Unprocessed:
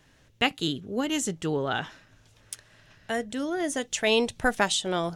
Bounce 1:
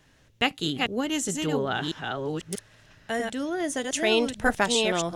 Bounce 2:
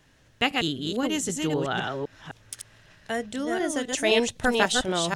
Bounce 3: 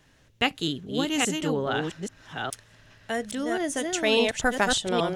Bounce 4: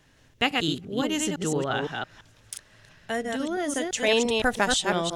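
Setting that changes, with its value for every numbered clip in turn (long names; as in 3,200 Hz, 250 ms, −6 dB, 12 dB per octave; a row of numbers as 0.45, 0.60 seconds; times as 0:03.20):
delay that plays each chunk backwards, delay time: 639, 257, 417, 170 milliseconds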